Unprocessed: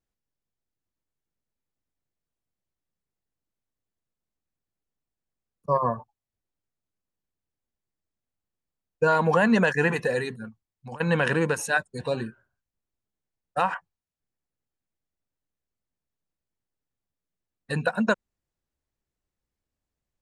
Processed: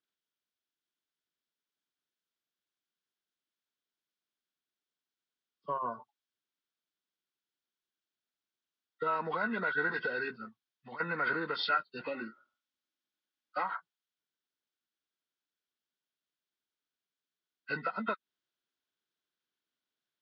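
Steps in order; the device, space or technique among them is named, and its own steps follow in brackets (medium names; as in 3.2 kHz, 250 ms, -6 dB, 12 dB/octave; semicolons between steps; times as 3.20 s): 12.06–13.63 s: comb 3.6 ms, depth 63%; hearing aid with frequency lowering (knee-point frequency compression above 1.1 kHz 1.5:1; compression 3:1, threshold -27 dBFS, peak gain reduction 8.5 dB; cabinet simulation 330–5700 Hz, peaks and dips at 530 Hz -8 dB, 800 Hz -6 dB, 1.5 kHz +6 dB, 3.3 kHz +6 dB); trim -2 dB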